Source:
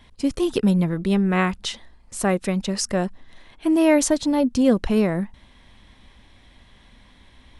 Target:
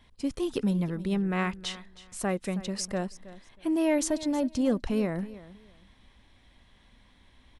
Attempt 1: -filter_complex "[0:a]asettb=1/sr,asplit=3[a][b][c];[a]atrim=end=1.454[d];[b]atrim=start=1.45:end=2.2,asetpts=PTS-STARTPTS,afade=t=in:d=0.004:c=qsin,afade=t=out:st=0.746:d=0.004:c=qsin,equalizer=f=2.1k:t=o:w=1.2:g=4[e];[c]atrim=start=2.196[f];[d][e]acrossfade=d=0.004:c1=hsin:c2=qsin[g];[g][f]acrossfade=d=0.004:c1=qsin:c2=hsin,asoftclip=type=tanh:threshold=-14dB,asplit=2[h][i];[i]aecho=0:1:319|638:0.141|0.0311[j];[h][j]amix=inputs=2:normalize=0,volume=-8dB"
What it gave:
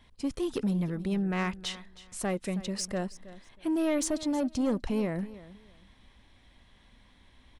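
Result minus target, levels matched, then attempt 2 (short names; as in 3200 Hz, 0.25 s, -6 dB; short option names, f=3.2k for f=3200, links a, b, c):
soft clip: distortion +14 dB
-filter_complex "[0:a]asettb=1/sr,asplit=3[a][b][c];[a]atrim=end=1.454[d];[b]atrim=start=1.45:end=2.2,asetpts=PTS-STARTPTS,afade=t=in:d=0.004:c=qsin,afade=t=out:st=0.746:d=0.004:c=qsin,equalizer=f=2.1k:t=o:w=1.2:g=4[e];[c]atrim=start=2.196[f];[d][e]acrossfade=d=0.004:c1=hsin:c2=qsin[g];[g][f]acrossfade=d=0.004:c1=qsin:c2=hsin,asoftclip=type=tanh:threshold=-4.5dB,asplit=2[h][i];[i]aecho=0:1:319|638:0.141|0.0311[j];[h][j]amix=inputs=2:normalize=0,volume=-8dB"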